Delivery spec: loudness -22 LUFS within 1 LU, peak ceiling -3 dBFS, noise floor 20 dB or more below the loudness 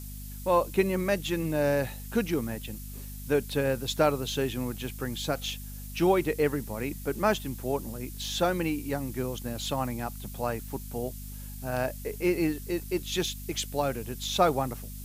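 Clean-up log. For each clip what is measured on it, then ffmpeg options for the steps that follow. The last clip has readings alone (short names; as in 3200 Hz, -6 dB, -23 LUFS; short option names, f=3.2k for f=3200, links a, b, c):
hum 50 Hz; harmonics up to 250 Hz; hum level -38 dBFS; noise floor -40 dBFS; noise floor target -50 dBFS; loudness -30.0 LUFS; peak -9.5 dBFS; loudness target -22.0 LUFS
-> -af "bandreject=f=50:t=h:w=4,bandreject=f=100:t=h:w=4,bandreject=f=150:t=h:w=4,bandreject=f=200:t=h:w=4,bandreject=f=250:t=h:w=4"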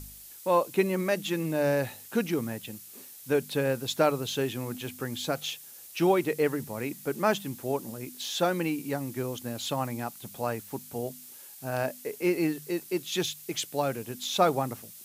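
hum none; noise floor -48 dBFS; noise floor target -50 dBFS
-> -af "afftdn=nr=6:nf=-48"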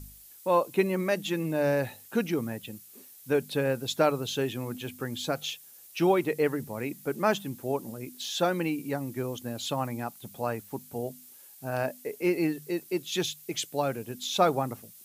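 noise floor -52 dBFS; loudness -30.0 LUFS; peak -9.5 dBFS; loudness target -22.0 LUFS
-> -af "volume=8dB,alimiter=limit=-3dB:level=0:latency=1"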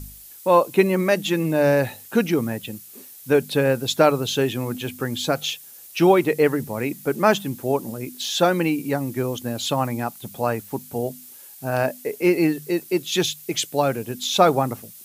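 loudness -22.0 LUFS; peak -3.0 dBFS; noise floor -44 dBFS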